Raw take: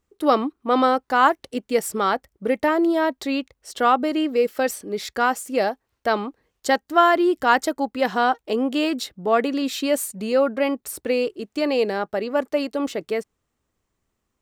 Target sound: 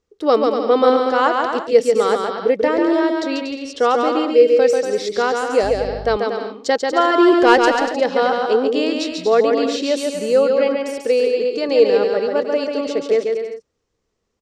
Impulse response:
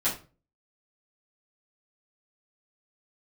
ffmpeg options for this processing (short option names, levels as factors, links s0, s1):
-filter_complex "[0:a]lowpass=f=5600:t=q:w=2,equalizer=f=460:t=o:w=0.47:g=11.5,asettb=1/sr,asplit=3[s0][s1][s2];[s0]atrim=end=7.184[s3];[s1]atrim=start=7.18:end=7.6,asetpts=PTS-STARTPTS,afade=t=in:d=0.004:c=qsin,afade=t=out:st=0.416:d=0.004:c=qsin,acontrast=62[s4];[s2]atrim=start=7.596[s5];[s3][s4]acrossfade=d=0.004:c1=hsin:c2=qsin[s6];[s6][s5]acrossfade=d=0.004:c1=qsin:c2=hsin,asplit=2[s7][s8];[s8]aecho=0:1:140|238|306.6|354.6|388.2:0.631|0.398|0.251|0.158|0.1[s9];[s7][s9]amix=inputs=2:normalize=0,asettb=1/sr,asplit=3[s10][s11][s12];[s10]atrim=end=5.634[s13];[s11]atrim=start=5.63:end=6.17,asetpts=PTS-STARTPTS,afade=t=in:d=0.004:c=qsin,afade=t=out:st=0.536:d=0.004:c=qsin,aeval=exprs='val(0)+0.0398*(sin(2*PI*50*n/s)+sin(2*PI*2*50*n/s)/2+sin(2*PI*3*50*n/s)/3+sin(2*PI*4*50*n/s)/4+sin(2*PI*5*50*n/s)/5)':c=same[s14];[s12]atrim=start=6.166[s15];[s13][s14]acrossfade=d=0.004:c1=hsin:c2=qsin[s16];[s16][s15]acrossfade=d=0.004:c1=qsin:c2=hsin,asettb=1/sr,asplit=3[s17][s18][s19];[s17]atrim=end=10.784[s20];[s18]atrim=start=10.78:end=11.69,asetpts=PTS-STARTPTS,afade=t=in:d=0.004:c=qsin,afade=t=out:st=0.906:d=0.004:c=qsin,lowshelf=f=140:g=-10[s21];[s19]atrim=start=11.686[s22];[s20][s21]acrossfade=d=0.004:c1=hsin:c2=qsin[s23];[s23][s22]acrossfade=d=0.004:c1=qsin:c2=hsin,volume=0.794"